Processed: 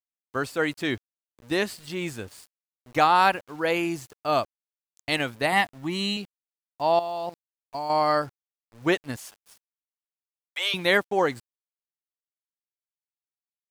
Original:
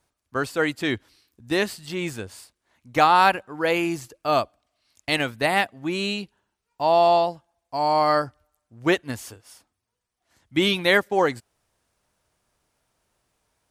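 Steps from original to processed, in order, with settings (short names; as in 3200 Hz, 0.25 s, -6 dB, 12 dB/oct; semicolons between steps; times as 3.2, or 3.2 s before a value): 5.52–6.17 comb 1 ms, depth 66%; 6.99–7.9 level quantiser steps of 14 dB; 9.16–10.74 steep high-pass 470 Hz 72 dB/oct; sample gate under -44 dBFS; gain -2.5 dB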